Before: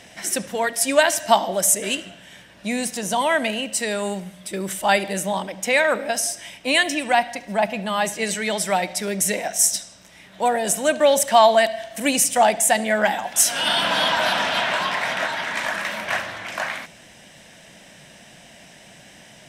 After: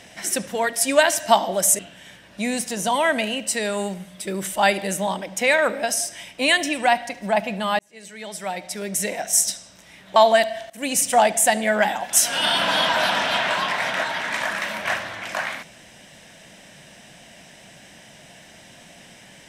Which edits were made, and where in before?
0:01.79–0:02.05: remove
0:08.05–0:09.75: fade in
0:10.42–0:11.39: remove
0:11.93–0:12.30: fade in, from −18.5 dB

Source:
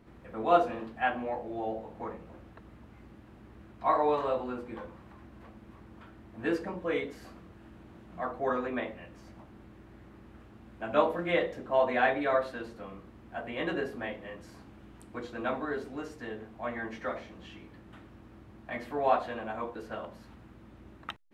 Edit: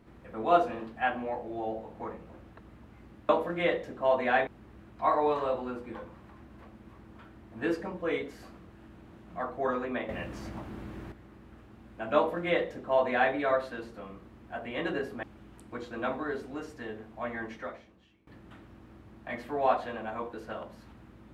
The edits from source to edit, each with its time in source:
0:08.91–0:09.94: clip gain +10.5 dB
0:10.98–0:12.16: duplicate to 0:03.29
0:14.05–0:14.65: remove
0:16.88–0:17.69: fade out quadratic, to −19.5 dB

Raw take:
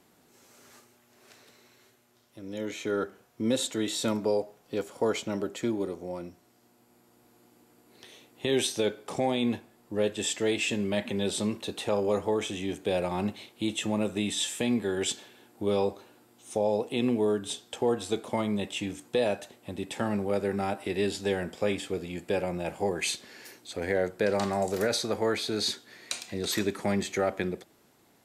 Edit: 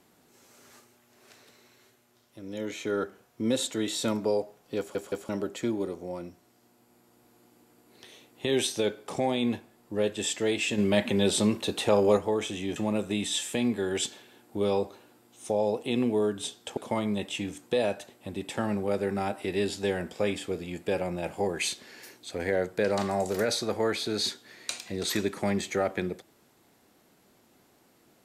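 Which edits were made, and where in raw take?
0:04.78: stutter in place 0.17 s, 3 plays
0:10.78–0:12.17: clip gain +5 dB
0:12.76–0:13.82: remove
0:17.83–0:18.19: remove

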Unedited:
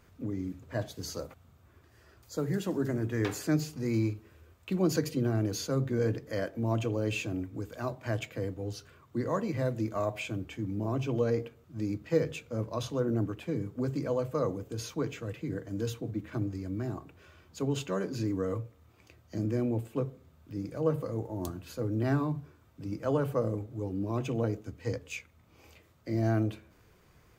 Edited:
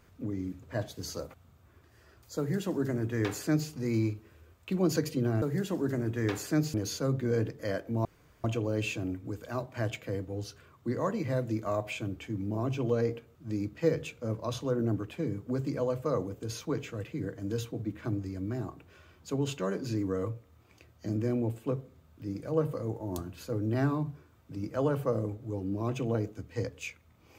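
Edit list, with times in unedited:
0:02.38–0:03.70: duplicate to 0:05.42
0:06.73: splice in room tone 0.39 s

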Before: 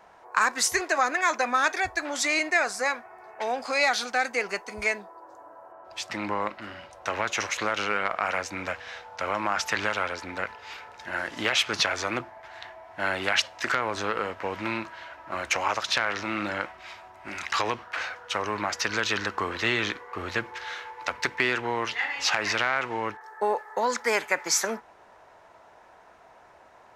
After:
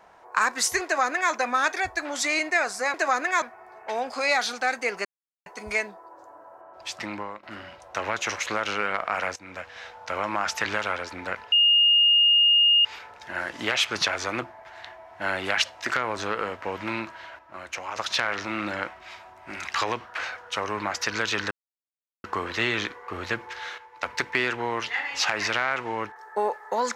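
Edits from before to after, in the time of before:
0:00.84–0:01.32: duplicate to 0:02.94
0:04.57: splice in silence 0.41 s
0:06.11–0:06.54: fade out, to −18 dB
0:08.47–0:09.01: fade in, from −15 dB
0:10.63: insert tone 2,840 Hz −15 dBFS 1.33 s
0:15.17–0:15.74: clip gain −8 dB
0:19.29: splice in silence 0.73 s
0:20.83–0:21.08: clip gain −8 dB

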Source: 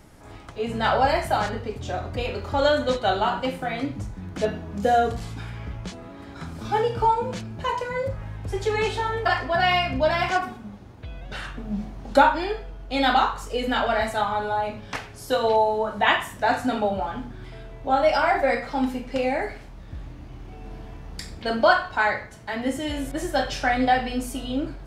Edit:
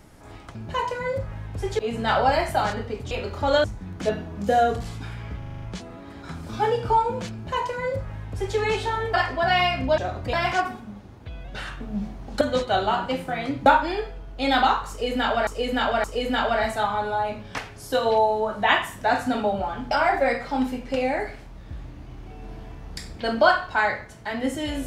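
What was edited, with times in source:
0:01.87–0:02.22: move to 0:10.10
0:02.75–0:04.00: move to 0:12.18
0:05.74: stutter 0.04 s, 7 plays
0:07.45–0:08.69: duplicate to 0:00.55
0:13.42–0:13.99: repeat, 3 plays
0:17.29–0:18.13: remove

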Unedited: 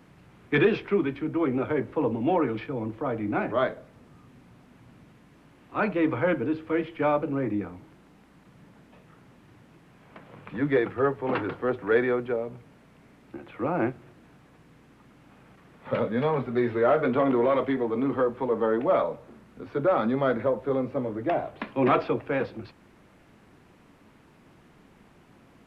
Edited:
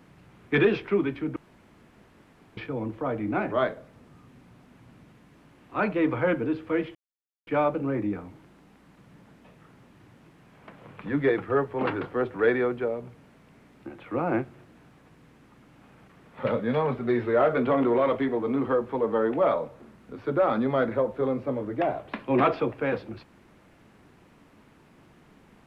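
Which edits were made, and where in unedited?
0:01.36–0:02.57: fill with room tone
0:06.95: splice in silence 0.52 s

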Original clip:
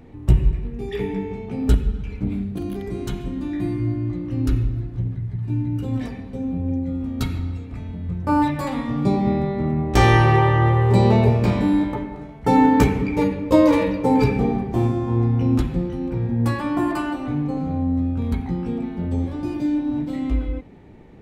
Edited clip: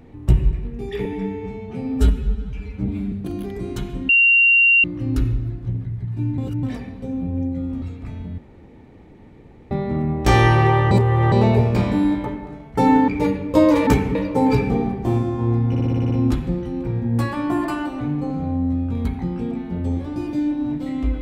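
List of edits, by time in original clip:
0:01.05–0:02.43: time-stretch 1.5×
0:03.40–0:04.15: beep over 2,760 Hz −10.5 dBFS
0:05.69–0:05.94: reverse
0:07.13–0:07.51: remove
0:08.07–0:09.40: fill with room tone
0:10.60–0:11.01: reverse
0:12.77–0:13.05: move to 0:13.84
0:15.38: stutter 0.06 s, 8 plays

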